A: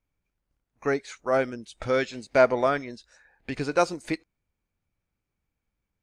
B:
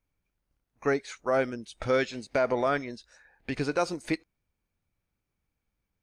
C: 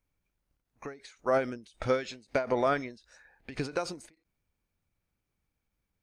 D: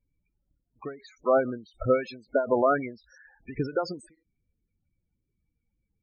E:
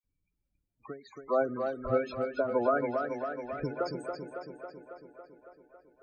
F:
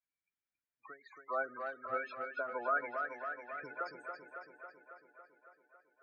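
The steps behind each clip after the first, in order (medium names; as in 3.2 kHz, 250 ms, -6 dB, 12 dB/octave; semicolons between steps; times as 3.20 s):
band-stop 7.4 kHz, Q 12; peak limiter -16 dBFS, peak gain reduction 8.5 dB
endings held to a fixed fall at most 160 dB/s
loudest bins only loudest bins 16; trim +5 dB
phase dispersion lows, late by 42 ms, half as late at 1.5 kHz; tape echo 276 ms, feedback 73%, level -4.5 dB, low-pass 4.5 kHz; trim -5.5 dB
band-pass filter 1.7 kHz, Q 2.2; trim +3.5 dB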